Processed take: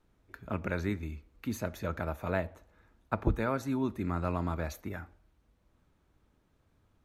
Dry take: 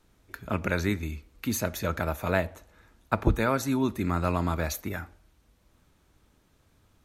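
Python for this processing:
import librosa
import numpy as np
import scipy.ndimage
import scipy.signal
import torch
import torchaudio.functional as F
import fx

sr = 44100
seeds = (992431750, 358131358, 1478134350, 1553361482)

y = fx.high_shelf(x, sr, hz=3000.0, db=-10.0)
y = F.gain(torch.from_numpy(y), -5.0).numpy()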